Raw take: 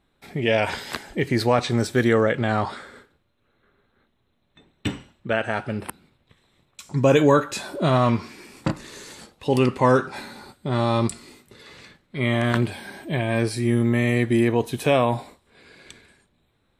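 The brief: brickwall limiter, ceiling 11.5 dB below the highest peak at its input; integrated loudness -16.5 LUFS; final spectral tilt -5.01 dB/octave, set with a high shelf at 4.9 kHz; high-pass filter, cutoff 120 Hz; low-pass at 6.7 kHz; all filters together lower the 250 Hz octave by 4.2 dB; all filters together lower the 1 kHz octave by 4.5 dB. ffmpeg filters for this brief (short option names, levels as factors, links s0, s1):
-af "highpass=120,lowpass=6700,equalizer=f=250:t=o:g=-4.5,equalizer=f=1000:t=o:g=-6,highshelf=f=4900:g=8,volume=4.47,alimiter=limit=0.668:level=0:latency=1"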